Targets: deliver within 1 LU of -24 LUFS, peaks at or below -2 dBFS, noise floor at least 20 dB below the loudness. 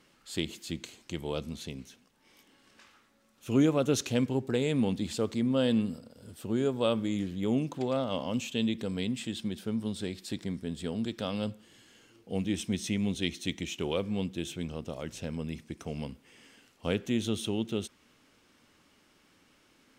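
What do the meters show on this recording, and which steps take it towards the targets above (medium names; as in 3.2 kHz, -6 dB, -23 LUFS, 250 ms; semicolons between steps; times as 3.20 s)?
loudness -32.0 LUFS; peak level -13.5 dBFS; loudness target -24.0 LUFS
-> trim +8 dB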